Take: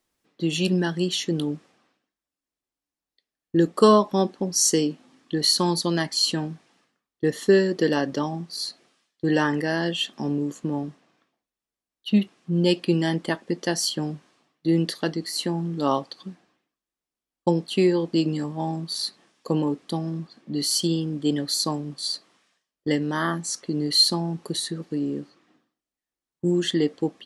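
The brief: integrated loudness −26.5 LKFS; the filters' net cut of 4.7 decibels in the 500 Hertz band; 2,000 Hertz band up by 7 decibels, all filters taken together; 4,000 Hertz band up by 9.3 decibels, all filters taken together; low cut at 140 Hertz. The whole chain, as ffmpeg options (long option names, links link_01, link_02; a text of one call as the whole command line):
ffmpeg -i in.wav -af "highpass=140,equalizer=frequency=500:width_type=o:gain=-7,equalizer=frequency=2000:width_type=o:gain=7,equalizer=frequency=4000:width_type=o:gain=9,volume=-6.5dB" out.wav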